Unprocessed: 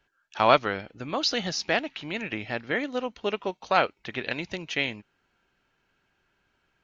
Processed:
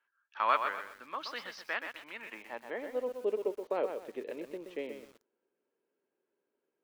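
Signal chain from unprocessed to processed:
loudspeaker in its box 240–6,400 Hz, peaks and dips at 240 Hz +3 dB, 730 Hz −8 dB, 1,400 Hz −6 dB
band-pass filter sweep 1,300 Hz → 450 Hz, 0:02.14–0:03.28
feedback echo at a low word length 125 ms, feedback 35%, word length 9 bits, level −7 dB

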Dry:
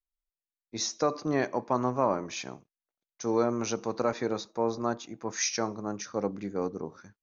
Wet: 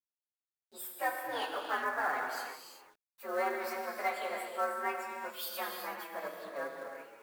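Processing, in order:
partials spread apart or drawn together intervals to 128%
high-pass filter 770 Hz 12 dB per octave
high-shelf EQ 6,100 Hz −7 dB
reverb whose tail is shaped and stops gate 410 ms flat, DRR 1.5 dB
log-companded quantiser 6 bits

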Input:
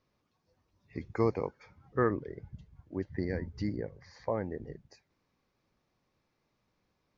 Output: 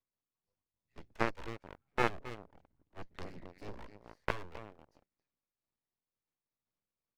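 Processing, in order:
gain on a spectral selection 0:03.24–0:03.68, 270–1,900 Hz −28 dB
harmonic generator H 6 −11 dB, 7 −16 dB, 8 −11 dB, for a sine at −14.5 dBFS
far-end echo of a speakerphone 270 ms, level −13 dB
half-wave rectification
amplitude modulation by smooth noise, depth 60%
level +6.5 dB

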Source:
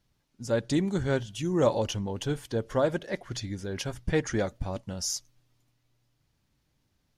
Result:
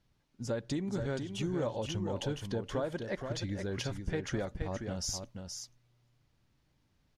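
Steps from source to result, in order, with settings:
high-shelf EQ 6,800 Hz −9.5 dB
downward compressor 5 to 1, threshold −32 dBFS, peak gain reduction 13 dB
single-tap delay 474 ms −6.5 dB

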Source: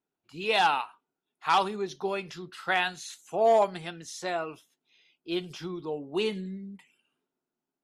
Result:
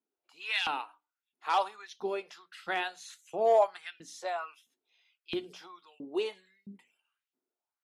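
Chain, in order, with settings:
auto-filter high-pass saw up 1.5 Hz 210–2,900 Hz
mains-hum notches 60/120/180/240/300 Hz
level −7 dB

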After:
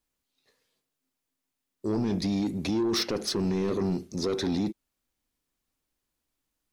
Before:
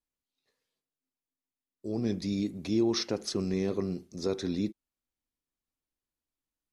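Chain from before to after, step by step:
dynamic equaliser 6,900 Hz, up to −6 dB, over −52 dBFS, Q 1.9
in parallel at −0.5 dB: compressor whose output falls as the input rises −32 dBFS, ratio −0.5
on the sum: soft clipping −23.5 dBFS, distortion −13 dB
level +2 dB

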